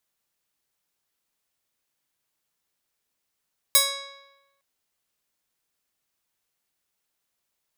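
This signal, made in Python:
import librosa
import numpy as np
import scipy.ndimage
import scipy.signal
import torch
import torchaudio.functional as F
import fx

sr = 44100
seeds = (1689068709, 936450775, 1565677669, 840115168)

y = fx.pluck(sr, length_s=0.86, note=73, decay_s=1.07, pick=0.37, brightness='bright')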